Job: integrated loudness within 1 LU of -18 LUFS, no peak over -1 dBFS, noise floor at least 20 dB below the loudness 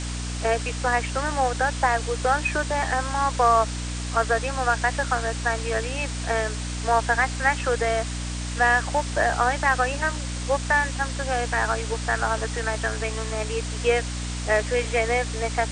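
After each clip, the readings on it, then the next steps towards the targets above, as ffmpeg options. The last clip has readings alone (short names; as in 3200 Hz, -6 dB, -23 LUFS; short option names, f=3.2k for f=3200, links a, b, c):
hum 60 Hz; harmonics up to 300 Hz; hum level -28 dBFS; noise floor -30 dBFS; noise floor target -44 dBFS; loudness -24.0 LUFS; peak -8.0 dBFS; loudness target -18.0 LUFS
-> -af "bandreject=f=60:t=h:w=4,bandreject=f=120:t=h:w=4,bandreject=f=180:t=h:w=4,bandreject=f=240:t=h:w=4,bandreject=f=300:t=h:w=4"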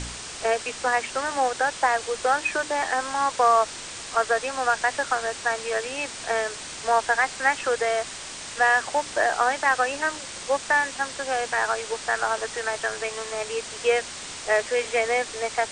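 hum none; noise floor -37 dBFS; noise floor target -45 dBFS
-> -af "afftdn=nr=8:nf=-37"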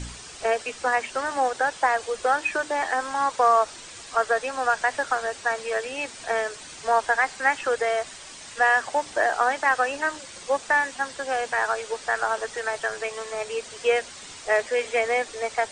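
noise floor -42 dBFS; noise floor target -45 dBFS
-> -af "afftdn=nr=6:nf=-42"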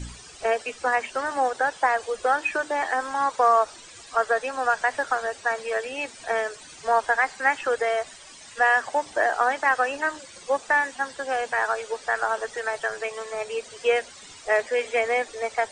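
noise floor -46 dBFS; loudness -25.0 LUFS; peak -9.0 dBFS; loudness target -18.0 LUFS
-> -af "volume=7dB"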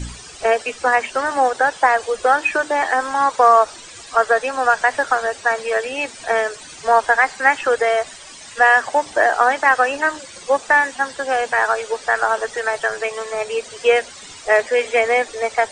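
loudness -18.0 LUFS; peak -2.0 dBFS; noise floor -39 dBFS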